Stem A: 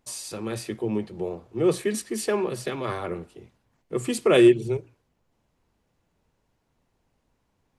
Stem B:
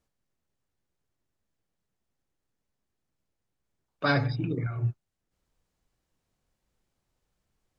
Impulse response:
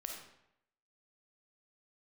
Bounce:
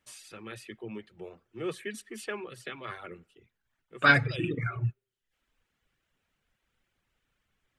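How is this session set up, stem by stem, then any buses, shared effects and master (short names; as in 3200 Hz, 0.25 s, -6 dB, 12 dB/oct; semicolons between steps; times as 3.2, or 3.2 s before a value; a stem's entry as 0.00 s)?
-13.5 dB, 0.00 s, send -18 dB, auto duck -10 dB, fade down 0.30 s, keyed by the second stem
-1.0 dB, 0.00 s, no send, dry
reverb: on, RT60 0.80 s, pre-delay 10 ms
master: reverb removal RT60 0.68 s; band shelf 2100 Hz +10 dB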